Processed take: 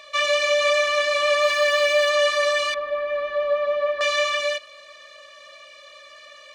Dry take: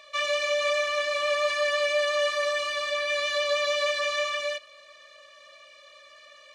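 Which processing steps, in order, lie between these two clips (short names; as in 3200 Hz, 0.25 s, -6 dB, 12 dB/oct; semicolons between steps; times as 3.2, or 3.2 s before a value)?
1.42–2.09 added noise white -59 dBFS; 2.74–4.01 LPF 1100 Hz 12 dB/oct; gain +6 dB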